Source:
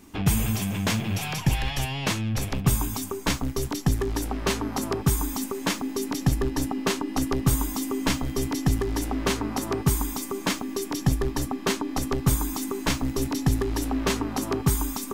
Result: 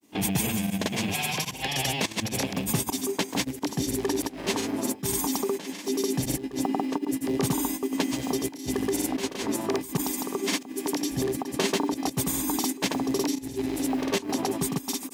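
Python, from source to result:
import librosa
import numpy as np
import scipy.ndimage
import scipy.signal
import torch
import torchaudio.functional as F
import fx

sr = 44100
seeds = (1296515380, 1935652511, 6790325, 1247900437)

p1 = scipy.signal.sosfilt(scipy.signal.butter(2, 210.0, 'highpass', fs=sr, output='sos'), x)
p2 = fx.peak_eq(p1, sr, hz=1300.0, db=-9.5, octaves=0.57)
p3 = fx.over_compress(p2, sr, threshold_db=-31.0, ratio=-1.0)
p4 = p2 + (p3 * librosa.db_to_amplitude(-2.5))
p5 = fx.mod_noise(p4, sr, seeds[0], snr_db=30)
p6 = fx.volume_shaper(p5, sr, bpm=85, per_beat=1, depth_db=-16, release_ms=144.0, shape='slow start')
y = fx.granulator(p6, sr, seeds[1], grain_ms=100.0, per_s=20.0, spray_ms=100.0, spread_st=0)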